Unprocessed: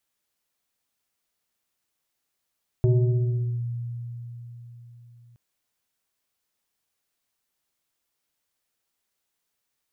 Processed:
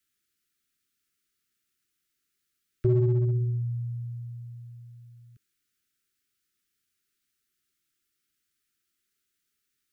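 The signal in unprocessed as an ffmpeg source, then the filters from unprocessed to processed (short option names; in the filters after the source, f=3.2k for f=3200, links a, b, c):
-f lavfi -i "aevalsrc='0.178*pow(10,-3*t/4.24)*sin(2*PI*119*t+0.84*clip(1-t/0.79,0,1)*sin(2*PI*2.13*119*t))':d=2.52:s=44100"
-filter_complex "[0:a]asuperstop=centerf=720:order=20:qfactor=0.89,equalizer=f=620:t=o:w=2:g=2,acrossover=split=200|250[a][b][c];[a]volume=22.5dB,asoftclip=hard,volume=-22.5dB[d];[d][b][c]amix=inputs=3:normalize=0"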